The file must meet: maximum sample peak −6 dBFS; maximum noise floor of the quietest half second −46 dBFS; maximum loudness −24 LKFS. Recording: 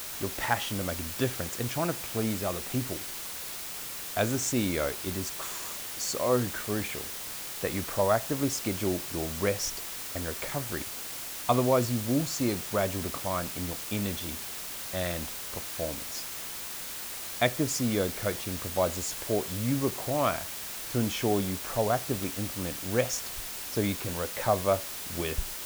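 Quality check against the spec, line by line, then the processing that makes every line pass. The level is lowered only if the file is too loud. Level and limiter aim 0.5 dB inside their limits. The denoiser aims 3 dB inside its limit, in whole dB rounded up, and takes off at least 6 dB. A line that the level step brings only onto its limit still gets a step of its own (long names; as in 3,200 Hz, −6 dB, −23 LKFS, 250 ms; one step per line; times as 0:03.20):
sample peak −10.5 dBFS: in spec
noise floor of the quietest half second −38 dBFS: out of spec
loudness −30.5 LKFS: in spec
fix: broadband denoise 11 dB, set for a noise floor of −38 dBFS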